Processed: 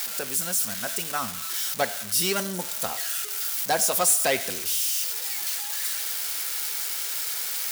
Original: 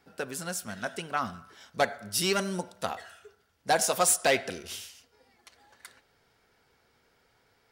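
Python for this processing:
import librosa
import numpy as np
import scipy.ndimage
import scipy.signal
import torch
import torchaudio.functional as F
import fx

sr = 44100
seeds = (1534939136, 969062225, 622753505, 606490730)

y = x + 0.5 * 10.0 ** (-20.0 / 20.0) * np.diff(np.sign(x), prepend=np.sign(x[:1]))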